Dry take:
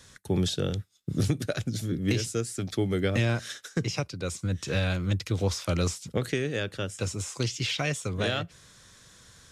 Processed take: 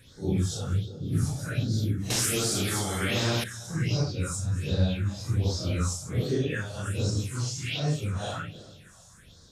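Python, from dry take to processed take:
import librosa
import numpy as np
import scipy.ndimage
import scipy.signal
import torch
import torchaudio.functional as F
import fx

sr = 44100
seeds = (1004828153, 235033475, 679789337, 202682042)

p1 = fx.phase_scramble(x, sr, seeds[0], window_ms=200)
p2 = p1 + fx.echo_feedback(p1, sr, ms=313, feedback_pct=49, wet_db=-19.5, dry=0)
p3 = fx.rider(p2, sr, range_db=10, speed_s=0.5)
p4 = fx.phaser_stages(p3, sr, stages=4, low_hz=330.0, high_hz=2300.0, hz=1.3, feedback_pct=45)
p5 = fx.spectral_comp(p4, sr, ratio=2.0, at=(2.1, 3.44))
y = F.gain(torch.from_numpy(p5), 1.0).numpy()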